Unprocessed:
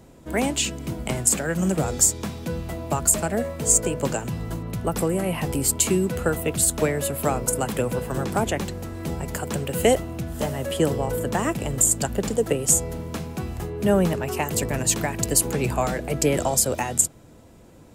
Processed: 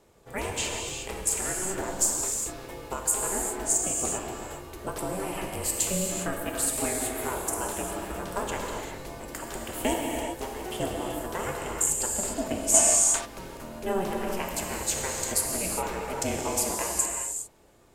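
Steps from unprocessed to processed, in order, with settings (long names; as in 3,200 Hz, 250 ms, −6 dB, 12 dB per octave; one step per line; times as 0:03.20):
high-pass filter 350 Hz 6 dB per octave
ring modulation 190 Hz
notch filter 720 Hz, Q 16
reverb whose tail is shaped and stops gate 430 ms flat, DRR −0.5 dB
gain on a spectral selection 0:12.74–0:13.25, 590–10,000 Hz +10 dB
level −4.5 dB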